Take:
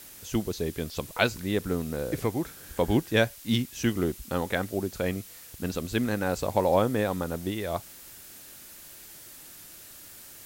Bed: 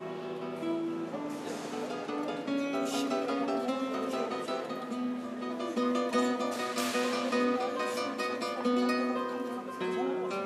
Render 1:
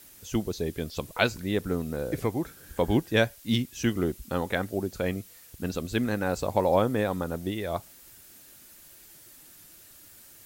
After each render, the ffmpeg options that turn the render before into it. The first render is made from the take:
-af "afftdn=nr=6:nf=-48"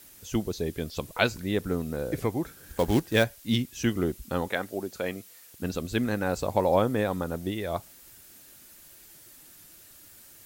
-filter_complex "[0:a]asettb=1/sr,asplit=3[a][b][c];[a]atrim=end=2.594[d];[b]atrim=start=2.59:end=3.24,asetpts=PTS-STARTPTS,afade=t=in:d=0.004:c=qsin,afade=t=out:st=0.646:d=0.004:c=qsin,acrusher=bits=4:mode=log:mix=0:aa=0.000001[e];[c]atrim=start=3.236[f];[d][e]acrossfade=d=0.004:c1=hsin:c2=qsin[g];[g][f]acrossfade=d=0.004:c1=qsin:c2=hsin,asettb=1/sr,asplit=3[h][i][j];[h]atrim=end=4.484[k];[i]atrim=start=4.48:end=5.62,asetpts=PTS-STARTPTS,afade=t=in:d=0.004:c=qsin,afade=t=out:st=1.136:d=0.004:c=qsin,highpass=f=340:p=1[l];[j]atrim=start=5.616[m];[k][l]acrossfade=d=0.004:c1=hsin:c2=qsin[n];[n][m]acrossfade=d=0.004:c1=qsin:c2=hsin"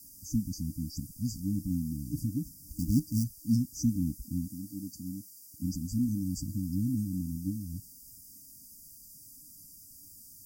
-af "afftfilt=real='re*(1-between(b*sr/4096,310,4600))':imag='im*(1-between(b*sr/4096,310,4600))':win_size=4096:overlap=0.75"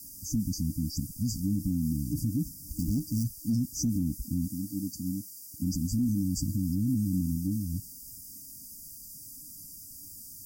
-af "acontrast=52,alimiter=limit=-20.5dB:level=0:latency=1:release=28"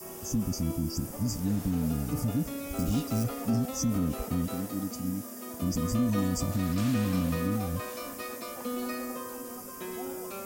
-filter_complex "[1:a]volume=-6dB[a];[0:a][a]amix=inputs=2:normalize=0"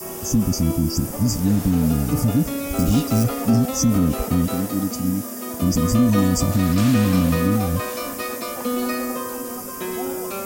-af "volume=10.5dB"

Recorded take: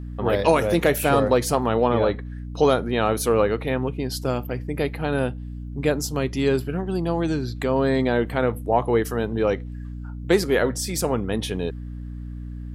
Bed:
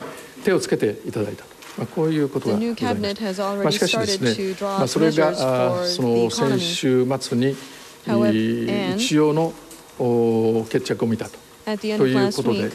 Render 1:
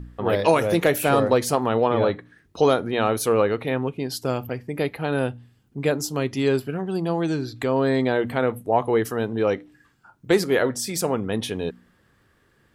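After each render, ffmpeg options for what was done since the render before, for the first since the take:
-af "bandreject=f=60:t=h:w=4,bandreject=f=120:t=h:w=4,bandreject=f=180:t=h:w=4,bandreject=f=240:t=h:w=4,bandreject=f=300:t=h:w=4"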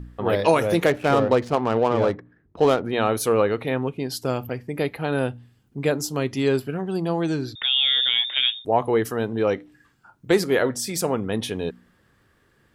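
-filter_complex "[0:a]asettb=1/sr,asplit=3[a][b][c];[a]atrim=end=0.864[d];[b]atrim=start=0.86:end=2.85,asetpts=PTS-STARTPTS,afade=t=in:d=0.004:c=qsin,afade=t=out:st=1.986:d=0.004:c=qsin,adynamicsmooth=sensitivity=2.5:basefreq=1.1k[e];[c]atrim=start=2.846[f];[d][e]acrossfade=d=0.004:c1=hsin:c2=qsin[g];[g][f]acrossfade=d=0.004:c1=qsin:c2=hsin,asettb=1/sr,asplit=3[h][i][j];[h]atrim=end=7.554[k];[i]atrim=start=7.55:end=8.65,asetpts=PTS-STARTPTS,afade=t=in:d=0.004:c=qsin,afade=t=out:st=1.096:d=0.004:c=qsin,lowpass=f=3.2k:t=q:w=0.5098,lowpass=f=3.2k:t=q:w=0.6013,lowpass=f=3.2k:t=q:w=0.9,lowpass=f=3.2k:t=q:w=2.563,afreqshift=-3800[l];[j]atrim=start=8.646[m];[k][l]acrossfade=d=0.004:c1=hsin:c2=qsin[n];[n][m]acrossfade=d=0.004:c1=qsin:c2=hsin"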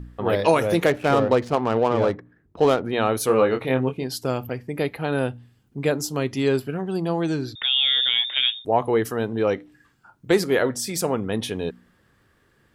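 -filter_complex "[0:a]asettb=1/sr,asplit=3[a][b][c];[a]atrim=end=3.264[d];[b]atrim=start=3.26:end=4.04,asetpts=PTS-STARTPTS,afade=t=in:d=0.004:c=qsin,afade=t=out:st=0.776:d=0.004:c=qsin,asplit=2[e][f];[f]adelay=23,volume=-5dB[g];[e][g]amix=inputs=2:normalize=0,atrim=end_sample=34398[h];[c]atrim=start=4.036[i];[d][h]acrossfade=d=0.004:c1=hsin:c2=qsin[j];[j][i]acrossfade=d=0.004:c1=qsin:c2=hsin"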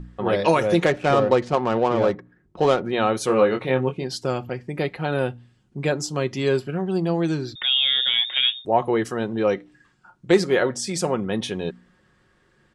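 -af "lowpass=f=8.7k:w=0.5412,lowpass=f=8.7k:w=1.3066,aecho=1:1:5.5:0.39"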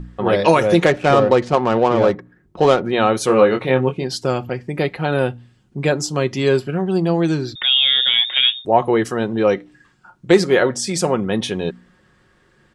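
-af "volume=5dB,alimiter=limit=-1dB:level=0:latency=1"

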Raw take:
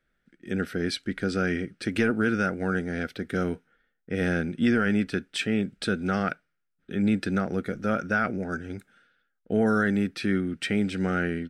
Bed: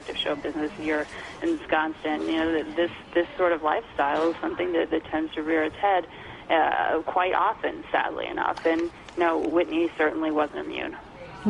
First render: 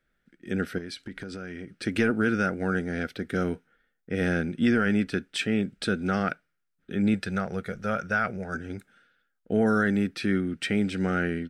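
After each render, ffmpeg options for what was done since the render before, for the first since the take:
-filter_complex "[0:a]asettb=1/sr,asplit=3[a][b][c];[a]atrim=end=0.784[d];[b]atrim=start=0.78:end=1.8,asetpts=PTS-STARTPTS,afade=t=in:d=0.004:c=qsin,afade=t=out:st=1.016:d=0.004:c=qsin,acompressor=threshold=-33dB:ratio=10:attack=3.2:release=140:knee=1:detection=peak[e];[c]atrim=start=1.796[f];[d][e]acrossfade=d=0.004:c1=hsin:c2=qsin[g];[g][f]acrossfade=d=0.004:c1=qsin:c2=hsin,asettb=1/sr,asplit=3[h][i][j];[h]atrim=end=7.144[k];[i]atrim=start=7.14:end=8.55,asetpts=PTS-STARTPTS,afade=t=in:d=0.004:c=qsin,afade=t=out:st=1.406:d=0.004:c=qsin,equalizer=f=290:w=2.6:g=-15[l];[j]atrim=start=8.546[m];[k][l]acrossfade=d=0.004:c1=hsin:c2=qsin[n];[n][m]acrossfade=d=0.004:c1=qsin:c2=hsin"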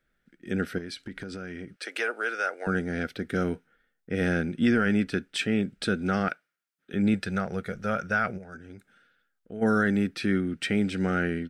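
-filter_complex "[0:a]asettb=1/sr,asplit=3[a][b][c];[a]atrim=end=1.764[d];[b]atrim=start=1.76:end=2.67,asetpts=PTS-STARTPTS,afade=t=in:d=0.004:c=qsin,afade=t=out:st=0.906:d=0.004:c=qsin,highpass=f=500:w=0.5412,highpass=f=500:w=1.3066[e];[c]atrim=start=2.666[f];[d][e]acrossfade=d=0.004:c1=hsin:c2=qsin[g];[g][f]acrossfade=d=0.004:c1=qsin:c2=hsin,asettb=1/sr,asplit=3[h][i][j];[h]atrim=end=6.284[k];[i]atrim=start=6.28:end=6.94,asetpts=PTS-STARTPTS,afade=t=in:d=0.004:c=qsin,afade=t=out:st=0.656:d=0.004:c=qsin,highpass=f=590:p=1[l];[j]atrim=start=6.936[m];[k][l]acrossfade=d=0.004:c1=hsin:c2=qsin[n];[n][m]acrossfade=d=0.004:c1=qsin:c2=hsin,asplit=3[o][p][q];[o]afade=t=out:st=8.37:d=0.02[r];[p]acompressor=threshold=-58dB:ratio=1.5:attack=3.2:release=140:knee=1:detection=peak,afade=t=in:st=8.37:d=0.02,afade=t=out:st=9.61:d=0.02[s];[q]afade=t=in:st=9.61:d=0.02[t];[r][s][t]amix=inputs=3:normalize=0"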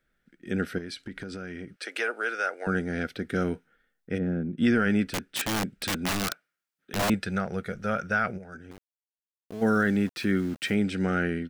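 -filter_complex "[0:a]asplit=3[a][b][c];[a]afade=t=out:st=4.17:d=0.02[d];[b]bandpass=f=190:t=q:w=0.83,afade=t=in:st=4.17:d=0.02,afade=t=out:st=4.57:d=0.02[e];[c]afade=t=in:st=4.57:d=0.02[f];[d][e][f]amix=inputs=3:normalize=0,asettb=1/sr,asplit=3[g][h][i];[g]atrim=end=5.104[j];[h]atrim=start=5.1:end=7.1,asetpts=PTS-STARTPTS,afade=t=in:d=0.004:c=qsin,afade=t=out:st=1.996:d=0.004:c=qsin,aeval=exprs='(mod(12.6*val(0)+1,2)-1)/12.6':c=same[k];[i]atrim=start=7.096[l];[j][k]acrossfade=d=0.004:c1=hsin:c2=qsin[m];[m][l]acrossfade=d=0.004:c1=qsin:c2=hsin,asettb=1/sr,asplit=3[n][o][p];[n]atrim=end=8.714[q];[o]atrim=start=8.71:end=10.75,asetpts=PTS-STARTPTS,afade=t=in:d=0.004:c=qsin,afade=t=out:st=2.036:d=0.004:c=qsin,aeval=exprs='val(0)*gte(abs(val(0)),0.00841)':c=same[r];[p]atrim=start=10.746[s];[q][r]acrossfade=d=0.004:c1=hsin:c2=qsin[t];[t][s]acrossfade=d=0.004:c1=qsin:c2=hsin"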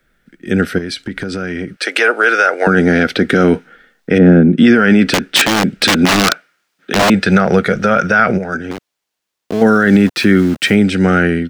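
-filter_complex "[0:a]acrossover=split=160|6800[a][b][c];[b]dynaudnorm=f=430:g=11:m=11dB[d];[a][d][c]amix=inputs=3:normalize=0,alimiter=level_in=14.5dB:limit=-1dB:release=50:level=0:latency=1"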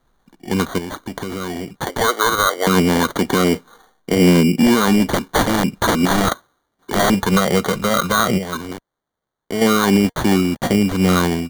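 -af "flanger=delay=0.1:depth=2.8:regen=83:speed=0.36:shape=triangular,acrusher=samples=17:mix=1:aa=0.000001"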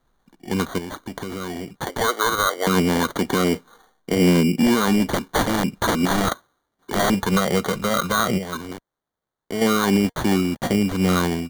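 -af "volume=-4dB"

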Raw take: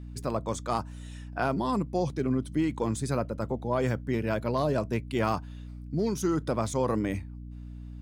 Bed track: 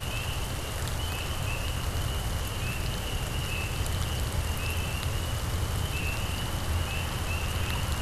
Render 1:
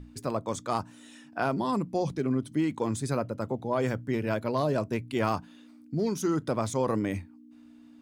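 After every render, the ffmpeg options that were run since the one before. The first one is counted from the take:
-af "bandreject=f=60:t=h:w=6,bandreject=f=120:t=h:w=6,bandreject=f=180:t=h:w=6"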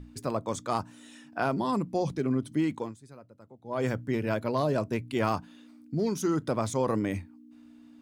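-filter_complex "[0:a]asplit=3[a][b][c];[a]atrim=end=2.95,asetpts=PTS-STARTPTS,afade=t=out:st=2.72:d=0.23:silence=0.0944061[d];[b]atrim=start=2.95:end=3.62,asetpts=PTS-STARTPTS,volume=-20.5dB[e];[c]atrim=start=3.62,asetpts=PTS-STARTPTS,afade=t=in:d=0.23:silence=0.0944061[f];[d][e][f]concat=n=3:v=0:a=1"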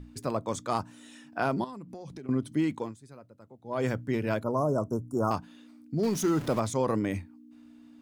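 -filter_complex "[0:a]asettb=1/sr,asplit=3[a][b][c];[a]atrim=end=1.644[d];[b]atrim=start=1.64:end=2.29,asetpts=PTS-STARTPTS,afade=t=in:d=0.004:c=qsin,afade=t=out:st=0.646:d=0.004:c=qsin,acompressor=threshold=-39dB:ratio=8:attack=3.2:release=140:knee=1:detection=peak[e];[c]atrim=start=2.286[f];[d][e]acrossfade=d=0.004:c1=hsin:c2=qsin[g];[g][f]acrossfade=d=0.004:c1=qsin:c2=hsin,asettb=1/sr,asplit=3[h][i][j];[h]atrim=end=4.434[k];[i]atrim=start=4.43:end=5.31,asetpts=PTS-STARTPTS,afade=t=in:d=0.004:c=qsin,afade=t=out:st=0.876:d=0.004:c=qsin,asuperstop=centerf=2800:order=20:qfactor=0.7[l];[j]atrim=start=5.306[m];[k][l]acrossfade=d=0.004:c1=hsin:c2=qsin[n];[n][m]acrossfade=d=0.004:c1=qsin:c2=hsin,asettb=1/sr,asplit=3[o][p][q];[o]atrim=end=6.034[r];[p]atrim=start=6.03:end=6.6,asetpts=PTS-STARTPTS,afade=t=in:d=0.004:c=qsin,afade=t=out:st=0.566:d=0.004:c=qsin,aeval=exprs='val(0)+0.5*0.0178*sgn(val(0))':c=same[s];[q]atrim=start=6.596[t];[r][s]acrossfade=d=0.004:c1=hsin:c2=qsin[u];[u][t]acrossfade=d=0.004:c1=qsin:c2=hsin"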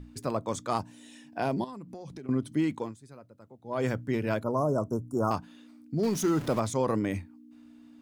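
-filter_complex "[0:a]asettb=1/sr,asplit=3[a][b][c];[a]atrim=end=0.784[d];[b]atrim=start=0.78:end=1.68,asetpts=PTS-STARTPTS,afade=t=in:d=0.004:c=qsin,afade=t=out:st=0.896:d=0.004:c=qsin,equalizer=f=1.3k:t=o:w=0.4:g=-12[e];[c]atrim=start=1.676[f];[d][e]acrossfade=d=0.004:c1=hsin:c2=qsin[g];[g][f]acrossfade=d=0.004:c1=qsin:c2=hsin"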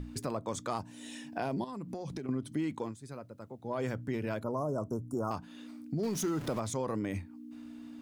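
-filter_complex "[0:a]asplit=2[a][b];[b]alimiter=level_in=1.5dB:limit=-24dB:level=0:latency=1,volume=-1.5dB,volume=0dB[c];[a][c]amix=inputs=2:normalize=0,acompressor=threshold=-38dB:ratio=2"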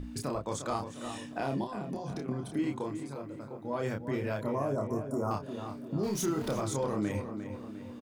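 -filter_complex "[0:a]asplit=2[a][b];[b]adelay=29,volume=-3.5dB[c];[a][c]amix=inputs=2:normalize=0,asplit=2[d][e];[e]adelay=352,lowpass=f=2.8k:p=1,volume=-8.5dB,asplit=2[f][g];[g]adelay=352,lowpass=f=2.8k:p=1,volume=0.52,asplit=2[h][i];[i]adelay=352,lowpass=f=2.8k:p=1,volume=0.52,asplit=2[j][k];[k]adelay=352,lowpass=f=2.8k:p=1,volume=0.52,asplit=2[l][m];[m]adelay=352,lowpass=f=2.8k:p=1,volume=0.52,asplit=2[n][o];[o]adelay=352,lowpass=f=2.8k:p=1,volume=0.52[p];[f][h][j][l][n][p]amix=inputs=6:normalize=0[q];[d][q]amix=inputs=2:normalize=0"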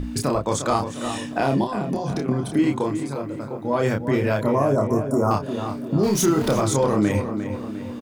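-af "volume=12dB"

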